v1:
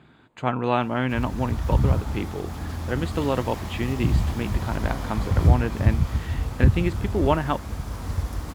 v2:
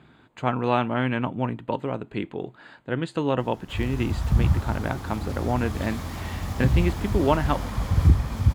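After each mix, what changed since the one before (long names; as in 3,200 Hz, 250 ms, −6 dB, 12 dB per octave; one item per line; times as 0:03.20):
background: entry +2.60 s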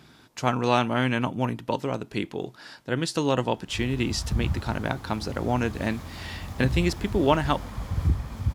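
speech: remove moving average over 8 samples
background −6.5 dB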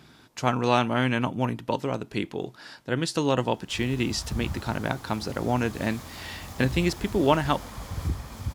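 background: add bass and treble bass −6 dB, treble +6 dB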